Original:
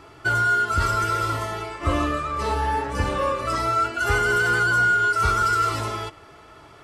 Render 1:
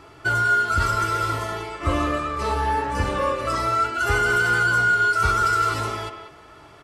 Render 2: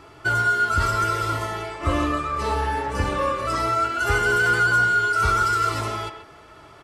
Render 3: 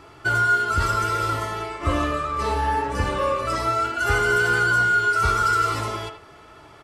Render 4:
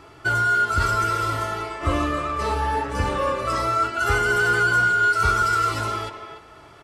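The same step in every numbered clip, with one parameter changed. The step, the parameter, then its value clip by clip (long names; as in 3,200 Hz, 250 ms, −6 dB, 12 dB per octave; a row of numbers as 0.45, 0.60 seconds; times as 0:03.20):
far-end echo of a speakerphone, delay time: 190, 130, 80, 290 milliseconds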